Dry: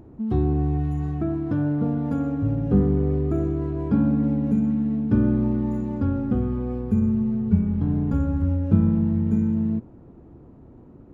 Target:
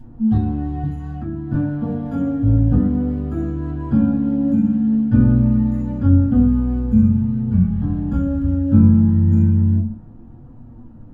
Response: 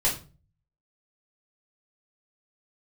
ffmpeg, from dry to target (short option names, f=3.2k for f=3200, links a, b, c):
-filter_complex "[0:a]asettb=1/sr,asplit=3[a][b][c];[a]atrim=end=0.834[d];[b]atrim=start=0.83:end=1.54,asetpts=PTS-STARTPTS,afade=t=in:d=0.004:c=qsin,afade=t=out:st=0.706:d=0.004:c=qsin,acrossover=split=310[e][f];[f]acompressor=threshold=-36dB:ratio=6[g];[e][g]amix=inputs=2:normalize=0[h];[c]atrim=start=1.536[i];[d][h]acrossfade=d=0.004:c1=hsin:c2=qsin[j];[j][i]acrossfade=d=0.004:c1=qsin:c2=hsin,equalizer=f=410:w=3.8:g=-11.5[k];[1:a]atrim=start_sample=2205,asetrate=70560,aresample=44100[l];[k][l]afir=irnorm=-1:irlink=0,flanger=delay=7.9:depth=9.7:regen=54:speed=0.19:shape=triangular"